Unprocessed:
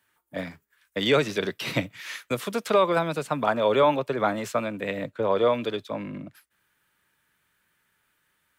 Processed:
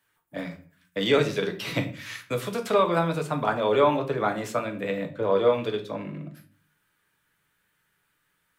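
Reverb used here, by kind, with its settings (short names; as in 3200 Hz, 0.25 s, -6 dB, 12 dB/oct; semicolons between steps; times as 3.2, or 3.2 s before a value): shoebox room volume 34 m³, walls mixed, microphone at 0.36 m; gain -2.5 dB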